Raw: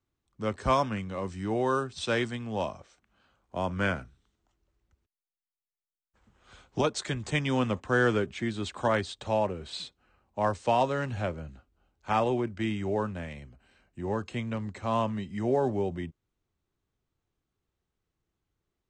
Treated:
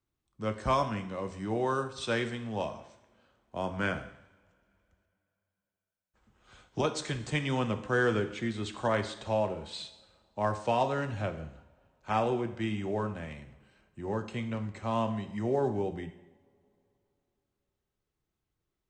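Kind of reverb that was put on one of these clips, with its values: two-slope reverb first 0.77 s, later 3.2 s, from -25 dB, DRR 7.5 dB; trim -3 dB

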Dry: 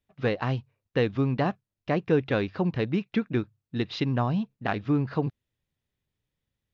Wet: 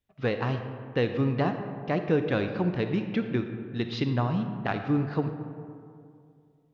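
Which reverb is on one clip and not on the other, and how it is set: algorithmic reverb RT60 2.4 s, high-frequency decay 0.4×, pre-delay 5 ms, DRR 6.5 dB; trim -1.5 dB

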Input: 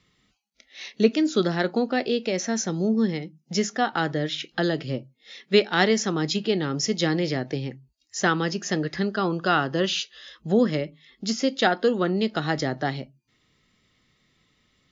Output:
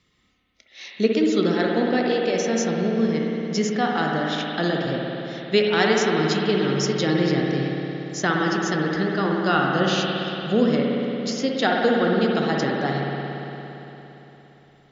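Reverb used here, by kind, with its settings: spring tank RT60 3.6 s, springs 57 ms, chirp 45 ms, DRR -1.5 dB; trim -1 dB

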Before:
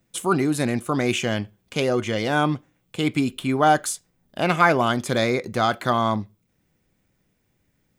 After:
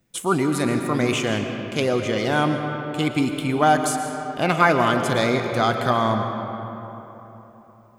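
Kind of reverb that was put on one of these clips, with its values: algorithmic reverb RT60 3.6 s, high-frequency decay 0.5×, pre-delay 80 ms, DRR 5 dB

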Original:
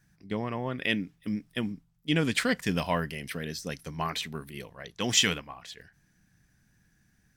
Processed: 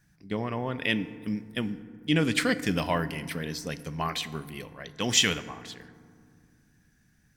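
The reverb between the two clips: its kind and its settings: FDN reverb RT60 2.1 s, low-frequency decay 1.5×, high-frequency decay 0.4×, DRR 13 dB; trim +1 dB

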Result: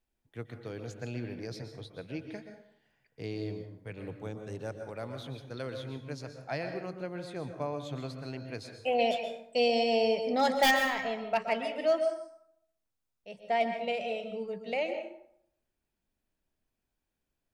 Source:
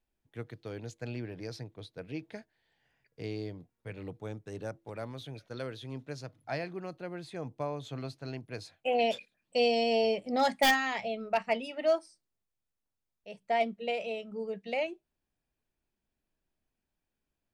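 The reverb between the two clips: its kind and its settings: plate-style reverb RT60 0.71 s, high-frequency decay 0.6×, pre-delay 110 ms, DRR 6.5 dB

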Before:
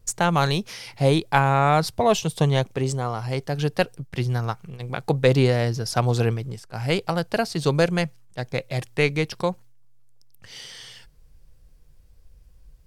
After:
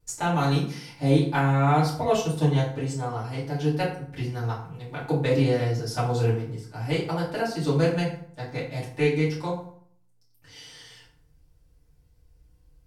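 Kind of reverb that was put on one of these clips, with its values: FDN reverb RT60 0.59 s, low-frequency decay 1.2×, high-frequency decay 0.65×, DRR -9.5 dB; trim -14.5 dB

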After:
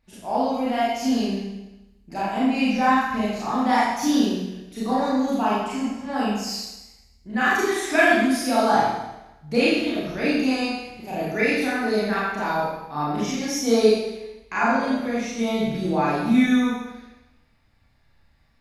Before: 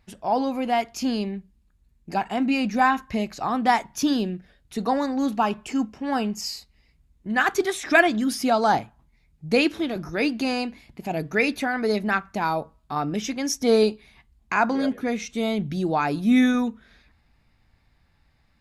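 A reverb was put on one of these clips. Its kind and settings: Schroeder reverb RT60 1 s, combs from 27 ms, DRR -9 dB; trim -8 dB

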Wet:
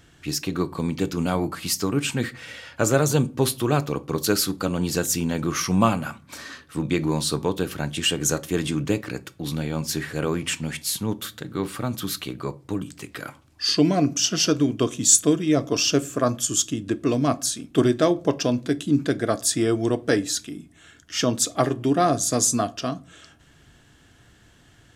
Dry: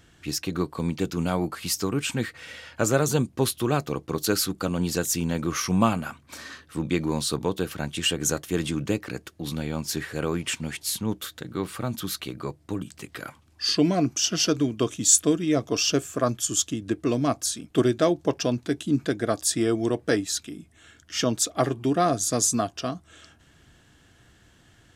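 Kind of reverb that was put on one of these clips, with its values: simulated room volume 240 m³, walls furnished, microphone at 0.33 m; trim +2 dB

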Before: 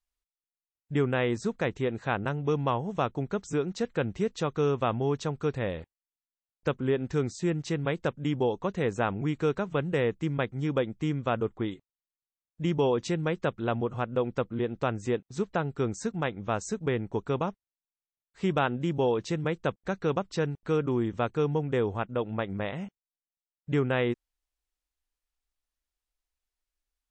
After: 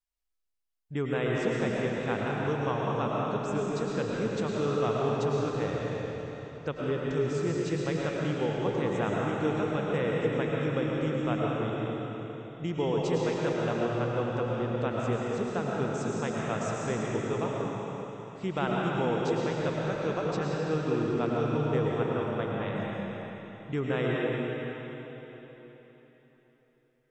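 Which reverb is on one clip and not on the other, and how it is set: algorithmic reverb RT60 3.9 s, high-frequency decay 0.95×, pre-delay 70 ms, DRR -4 dB; trim -5.5 dB

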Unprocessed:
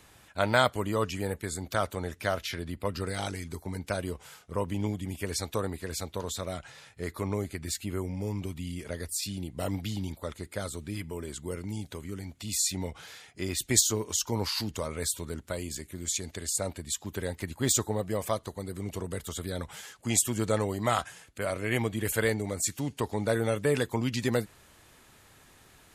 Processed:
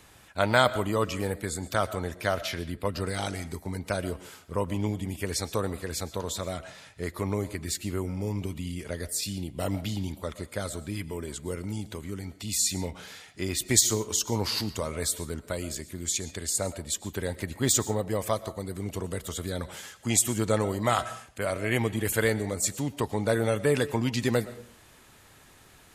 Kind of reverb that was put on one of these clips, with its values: algorithmic reverb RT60 0.54 s, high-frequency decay 0.45×, pre-delay 80 ms, DRR 15.5 dB; trim +2 dB

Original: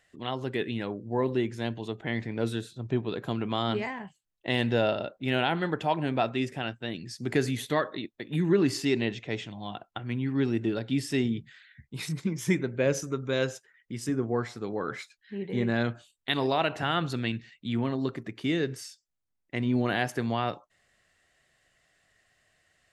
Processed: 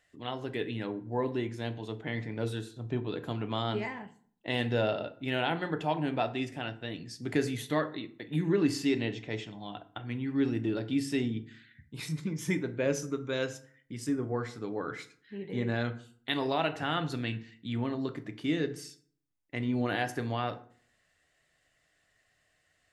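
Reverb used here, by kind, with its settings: FDN reverb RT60 0.52 s, low-frequency decay 1.25×, high-frequency decay 0.65×, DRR 8.5 dB; trim -4 dB

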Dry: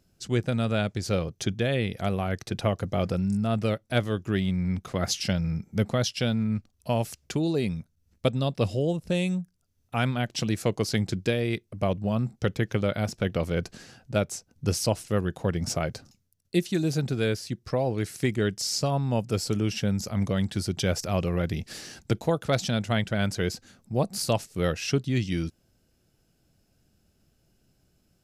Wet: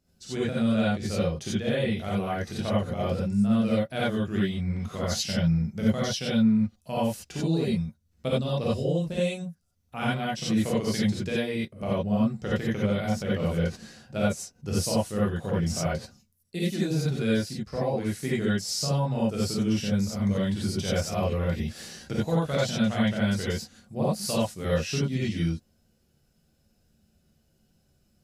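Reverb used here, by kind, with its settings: gated-style reverb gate 110 ms rising, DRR -7.5 dB; trim -9 dB

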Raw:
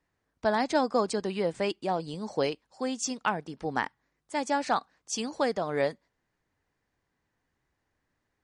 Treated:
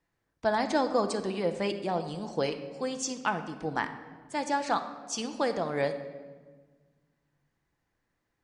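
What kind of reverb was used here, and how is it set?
simulated room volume 1400 m³, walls mixed, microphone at 0.75 m; trim -1.5 dB

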